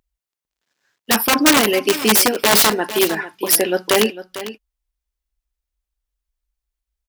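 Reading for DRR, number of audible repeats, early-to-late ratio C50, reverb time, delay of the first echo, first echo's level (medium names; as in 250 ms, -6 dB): no reverb, 1, no reverb, no reverb, 450 ms, -14.0 dB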